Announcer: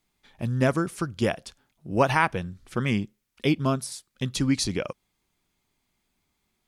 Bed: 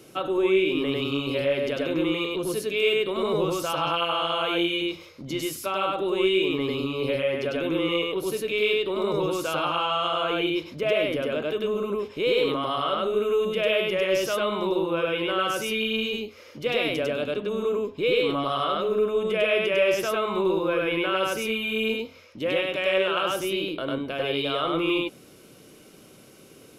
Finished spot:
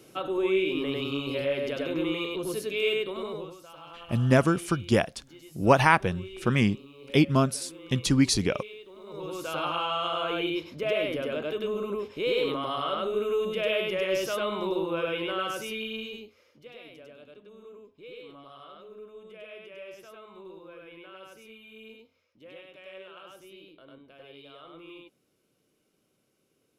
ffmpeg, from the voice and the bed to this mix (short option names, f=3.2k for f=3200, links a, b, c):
-filter_complex "[0:a]adelay=3700,volume=2dB[a];[1:a]volume=13dB,afade=t=out:st=2.92:d=0.64:silence=0.141254,afade=t=in:st=9.05:d=0.58:silence=0.141254,afade=t=out:st=15.11:d=1.6:silence=0.11885[b];[a][b]amix=inputs=2:normalize=0"